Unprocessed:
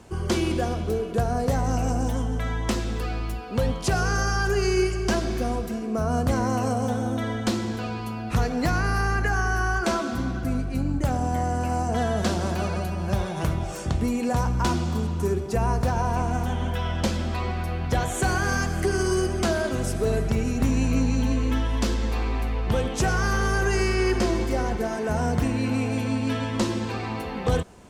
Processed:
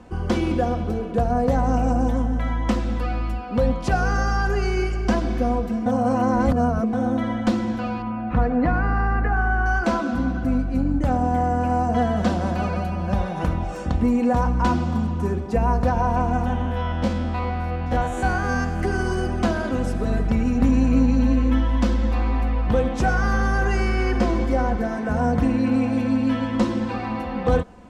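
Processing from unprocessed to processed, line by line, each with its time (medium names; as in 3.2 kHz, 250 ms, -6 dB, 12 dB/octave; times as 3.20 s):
5.86–6.93 s: reverse
8.02–9.66 s: low-pass 2.1 kHz
16.61–18.80 s: spectrogram pixelated in time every 50 ms
whole clip: low-pass 1.6 kHz 6 dB/octave; band-stop 440 Hz, Q 12; comb 4 ms, depth 51%; trim +3 dB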